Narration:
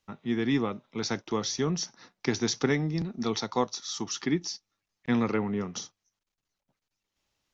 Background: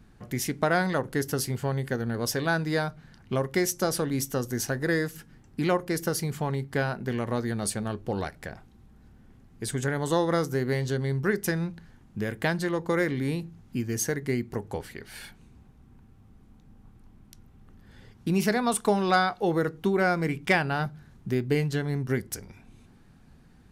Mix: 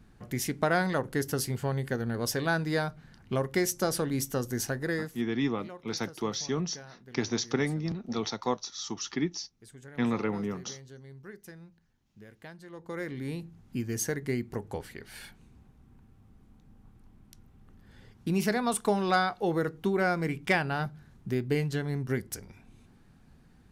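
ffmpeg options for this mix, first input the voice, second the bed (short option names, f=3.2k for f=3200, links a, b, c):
-filter_complex "[0:a]adelay=4900,volume=-2.5dB[a];[1:a]volume=15.5dB,afade=t=out:st=4.61:d=0.85:silence=0.11885,afade=t=in:st=12.66:d=1.07:silence=0.133352[b];[a][b]amix=inputs=2:normalize=0"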